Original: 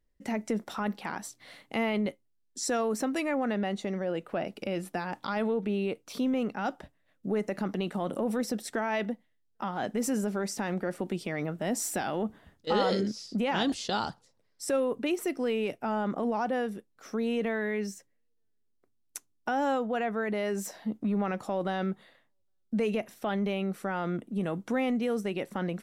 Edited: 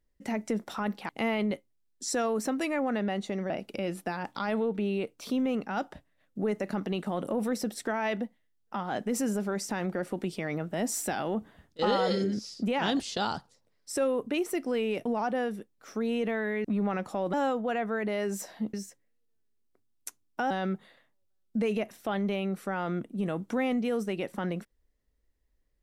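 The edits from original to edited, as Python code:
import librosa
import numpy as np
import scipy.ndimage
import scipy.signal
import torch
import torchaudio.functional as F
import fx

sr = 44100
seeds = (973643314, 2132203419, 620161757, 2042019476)

y = fx.edit(x, sr, fx.cut(start_s=1.09, length_s=0.55),
    fx.cut(start_s=4.05, length_s=0.33),
    fx.stretch_span(start_s=12.79, length_s=0.31, factor=1.5),
    fx.cut(start_s=15.78, length_s=0.45),
    fx.swap(start_s=17.82, length_s=1.77, other_s=20.99, other_length_s=0.69), tone=tone)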